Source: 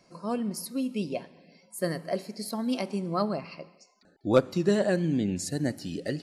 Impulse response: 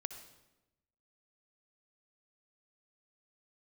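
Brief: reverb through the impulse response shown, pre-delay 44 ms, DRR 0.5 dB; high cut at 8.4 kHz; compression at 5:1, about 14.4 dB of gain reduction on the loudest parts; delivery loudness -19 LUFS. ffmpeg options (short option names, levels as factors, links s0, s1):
-filter_complex "[0:a]lowpass=8400,acompressor=threshold=0.0282:ratio=5,asplit=2[s0][s1];[1:a]atrim=start_sample=2205,adelay=44[s2];[s1][s2]afir=irnorm=-1:irlink=0,volume=1.12[s3];[s0][s3]amix=inputs=2:normalize=0,volume=5.31"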